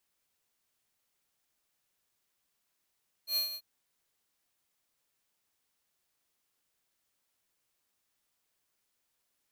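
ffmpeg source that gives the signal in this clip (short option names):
-f lavfi -i "aevalsrc='0.0355*(2*lt(mod(4230*t,1),0.5)-1)':d=0.34:s=44100,afade=t=in:d=0.093,afade=t=out:st=0.093:d=0.125:silence=0.282,afade=t=out:st=0.28:d=0.06"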